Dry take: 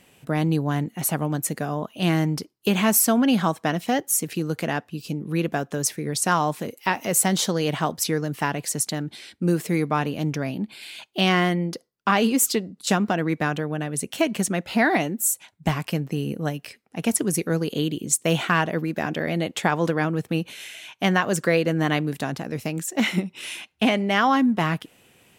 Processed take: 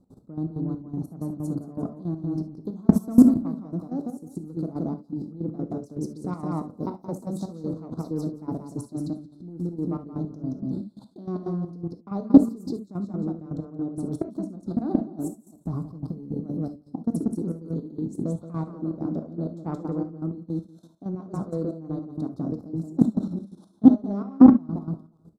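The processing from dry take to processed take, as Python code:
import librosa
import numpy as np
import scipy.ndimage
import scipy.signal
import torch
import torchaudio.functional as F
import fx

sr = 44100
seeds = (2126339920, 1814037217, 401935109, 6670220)

p1 = fx.tilt_eq(x, sr, slope=-3.5)
p2 = fx.rider(p1, sr, range_db=4, speed_s=0.5)
p3 = p1 + F.gain(torch.from_numpy(p2), -0.5).numpy()
p4 = scipy.signal.sosfilt(scipy.signal.ellip(3, 1.0, 40, [1300.0, 4000.0], 'bandstop', fs=sr, output='sos'), p3)
p5 = p4 + fx.echo_feedback(p4, sr, ms=175, feedback_pct=24, wet_db=-3.0, dry=0)
p6 = 10.0 ** (-0.5 / 20.0) * np.tanh(p5 / 10.0 ** (-0.5 / 20.0))
p7 = fx.peak_eq(p6, sr, hz=280.0, db=9.0, octaves=1.2)
p8 = fx.transient(p7, sr, attack_db=1, sustain_db=-6)
p9 = fx.level_steps(p8, sr, step_db=21)
p10 = fx.step_gate(p9, sr, bpm=161, pattern='.x..x.xx.', floor_db=-12.0, edge_ms=4.5)
p11 = fx.rev_gated(p10, sr, seeds[0], gate_ms=90, shape='flat', drr_db=9.0)
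p12 = fx.doppler_dist(p11, sr, depth_ms=0.12)
y = F.gain(torch.from_numpy(p12), -7.0).numpy()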